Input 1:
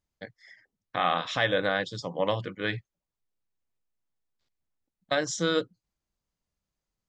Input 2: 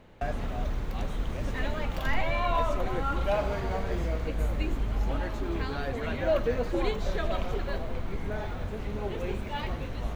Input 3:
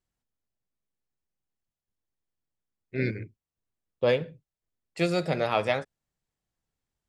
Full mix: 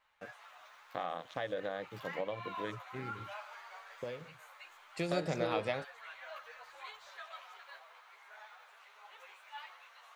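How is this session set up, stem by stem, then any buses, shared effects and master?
−12.0 dB, 0.00 s, bus A, no send, adaptive Wiener filter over 41 samples
−9.0 dB, 0.00 s, bus A, no send, high-pass filter 1,100 Hz 24 dB per octave; string-ensemble chorus
0:04.73 −9.5 dB → 0:05.12 −1 dB, 0.00 s, no bus, no send, downward compressor, threshold −30 dBFS, peak gain reduction 11 dB
bus A: 0.0 dB, parametric band 550 Hz +9 dB 2 octaves; downward compressor 6 to 1, threshold −34 dBFS, peak gain reduction 8.5 dB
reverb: not used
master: no processing

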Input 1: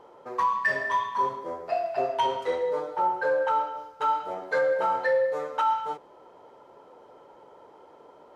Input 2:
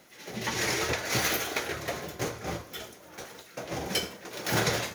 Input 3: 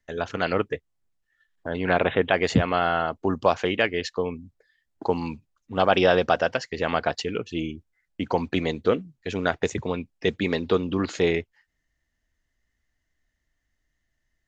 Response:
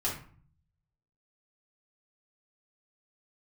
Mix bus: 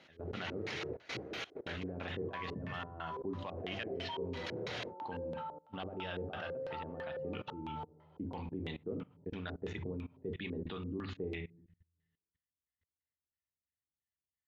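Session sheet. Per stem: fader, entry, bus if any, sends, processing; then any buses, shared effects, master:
−17.5 dB, 1.90 s, send −4 dB, no processing
−1.5 dB, 0.00 s, no send, notch filter 3,500 Hz, Q 20; automatic ducking −7 dB, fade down 0.55 s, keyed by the third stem
−8.5 dB, 0.00 s, send −10 dB, parametric band 490 Hz −8.5 dB 1.6 octaves; wave folding −13 dBFS; high-shelf EQ 4,200 Hz −11.5 dB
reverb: on, RT60 0.45 s, pre-delay 3 ms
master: high-pass filter 63 Hz 24 dB per octave; output level in coarse steps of 21 dB; auto-filter low-pass square 3 Hz 420–3,400 Hz

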